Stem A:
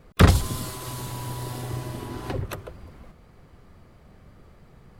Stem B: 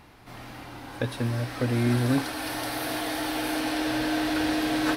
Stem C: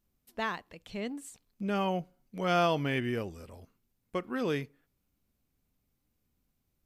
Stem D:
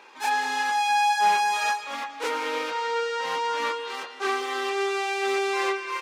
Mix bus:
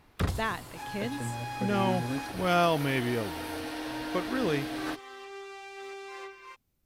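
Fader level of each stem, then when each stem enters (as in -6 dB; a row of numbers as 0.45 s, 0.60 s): -14.5 dB, -9.5 dB, +2.0 dB, -17.0 dB; 0.00 s, 0.00 s, 0.00 s, 0.55 s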